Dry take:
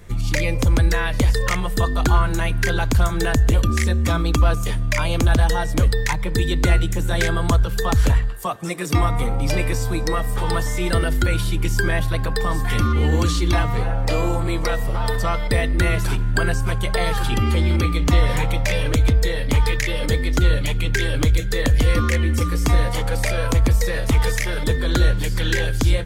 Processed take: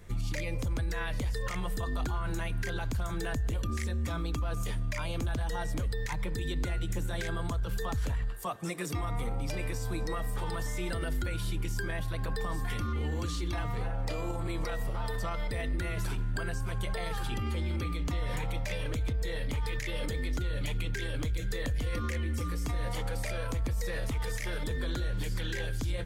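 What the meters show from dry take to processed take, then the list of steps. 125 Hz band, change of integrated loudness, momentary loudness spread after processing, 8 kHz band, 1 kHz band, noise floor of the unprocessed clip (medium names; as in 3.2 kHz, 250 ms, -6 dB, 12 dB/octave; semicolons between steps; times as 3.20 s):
-14.0 dB, -14.0 dB, 2 LU, -14.0 dB, -13.5 dB, -23 dBFS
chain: peak limiter -17 dBFS, peak gain reduction 10 dB; trim -8 dB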